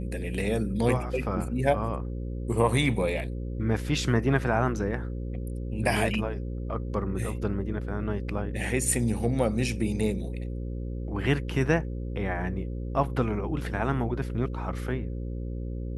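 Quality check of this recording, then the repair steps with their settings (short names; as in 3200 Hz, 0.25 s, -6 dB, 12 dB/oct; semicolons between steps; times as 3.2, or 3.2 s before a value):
buzz 60 Hz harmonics 9 -33 dBFS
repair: de-hum 60 Hz, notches 9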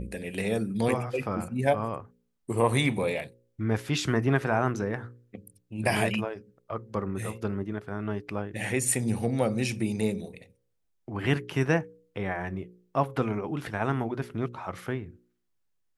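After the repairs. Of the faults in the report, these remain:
none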